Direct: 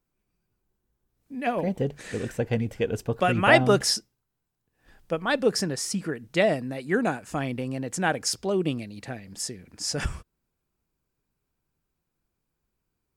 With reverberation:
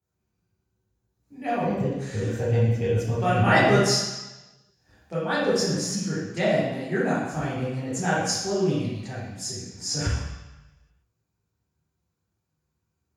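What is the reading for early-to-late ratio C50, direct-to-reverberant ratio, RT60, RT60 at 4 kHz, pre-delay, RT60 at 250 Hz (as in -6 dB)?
-1.0 dB, -10.0 dB, 1.0 s, 1.1 s, 3 ms, 1.0 s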